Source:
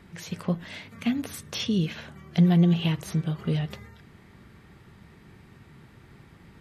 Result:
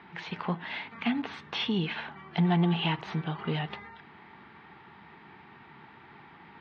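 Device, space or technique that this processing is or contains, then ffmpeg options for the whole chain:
overdrive pedal into a guitar cabinet: -filter_complex "[0:a]asplit=2[link_01][link_02];[link_02]highpass=frequency=720:poles=1,volume=16dB,asoftclip=type=tanh:threshold=-11dB[link_03];[link_01][link_03]amix=inputs=2:normalize=0,lowpass=frequency=2900:poles=1,volume=-6dB,highpass=86,equalizer=frequency=110:width_type=q:width=4:gain=-6,equalizer=frequency=550:width_type=q:width=4:gain=-9,equalizer=frequency=870:width_type=q:width=4:gain=9,lowpass=frequency=3800:width=0.5412,lowpass=frequency=3800:width=1.3066,volume=-4dB"

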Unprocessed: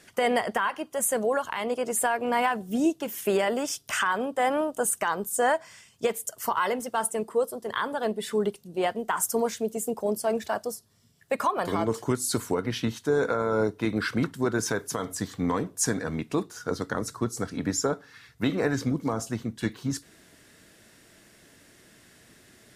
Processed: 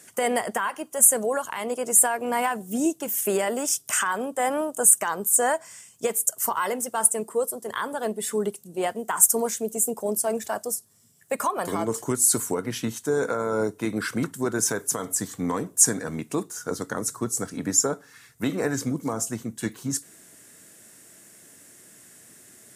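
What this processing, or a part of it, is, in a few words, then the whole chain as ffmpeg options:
budget condenser microphone: -af "highpass=110,highshelf=frequency=5800:width_type=q:width=1.5:gain=9.5"

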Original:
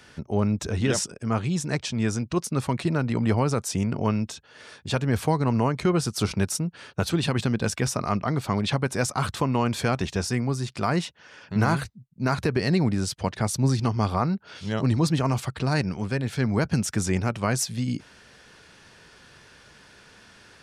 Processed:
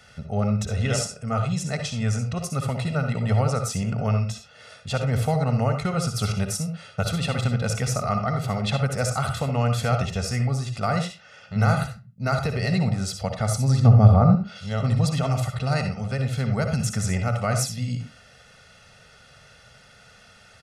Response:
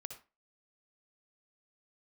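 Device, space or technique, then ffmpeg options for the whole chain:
microphone above a desk: -filter_complex "[0:a]asettb=1/sr,asplit=3[link_01][link_02][link_03];[link_01]atrim=end=13.804[link_04];[link_02]atrim=start=13.8:end=14.35,asetpts=PTS-STARTPTS,afade=type=in:duration=0.004:curve=qsin,afade=type=out:start_time=0.546:duration=0.004:curve=qsin,tiltshelf=frequency=1100:gain=10[link_05];[link_03]atrim=start=14.346[link_06];[link_04][link_05]acrossfade=duration=0.004:curve1=hsin:curve2=qsin[link_07];[link_07][link_06]acrossfade=duration=0.004:curve1=qsin:curve2=hsin,aecho=1:1:1.5:0.9[link_08];[1:a]atrim=start_sample=2205[link_09];[link_08][link_09]afir=irnorm=-1:irlink=0,volume=1.5dB"

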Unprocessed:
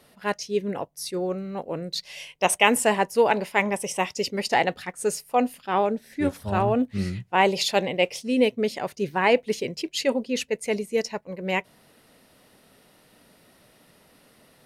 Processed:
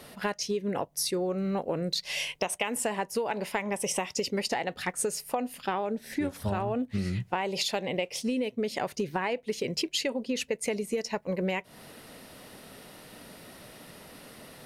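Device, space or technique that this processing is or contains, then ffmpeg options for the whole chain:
serial compression, peaks first: -af "acompressor=threshold=-31dB:ratio=6,acompressor=threshold=-36dB:ratio=3,volume=8.5dB"

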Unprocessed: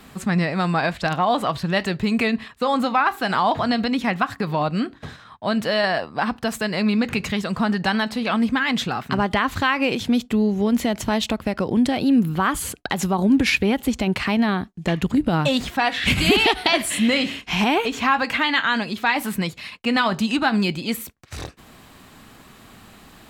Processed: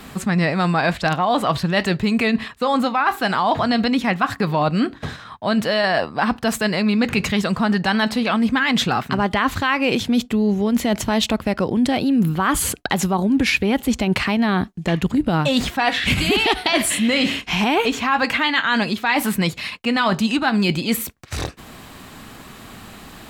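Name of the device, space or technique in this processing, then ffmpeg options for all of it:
compression on the reversed sound: -af "areverse,acompressor=threshold=-22dB:ratio=6,areverse,volume=7dB"

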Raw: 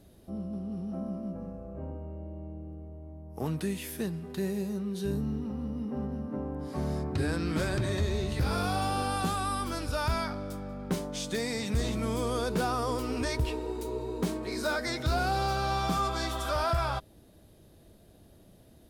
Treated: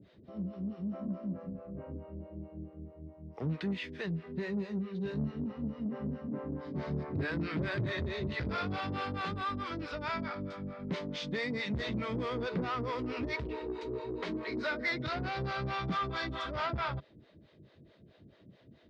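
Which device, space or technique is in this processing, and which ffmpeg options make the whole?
guitar amplifier with harmonic tremolo: -filter_complex "[0:a]acrossover=split=460[link_01][link_02];[link_01]aeval=exprs='val(0)*(1-1/2+1/2*cos(2*PI*4.6*n/s))':channel_layout=same[link_03];[link_02]aeval=exprs='val(0)*(1-1/2-1/2*cos(2*PI*4.6*n/s))':channel_layout=same[link_04];[link_03][link_04]amix=inputs=2:normalize=0,asoftclip=type=tanh:threshold=-32dB,highpass=97,equalizer=frequency=140:width_type=q:width=4:gain=3,equalizer=frequency=770:width_type=q:width=4:gain=-7,equalizer=frequency=2000:width_type=q:width=4:gain=6,lowpass=frequency=4100:width=0.5412,lowpass=frequency=4100:width=1.3066,volume=4dB"

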